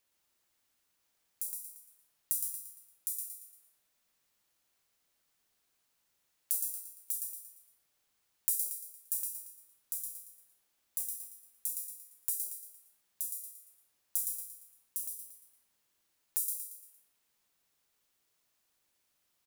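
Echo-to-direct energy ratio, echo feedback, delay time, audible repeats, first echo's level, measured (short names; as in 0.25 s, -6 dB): -3.5 dB, 42%, 0.115 s, 5, -4.5 dB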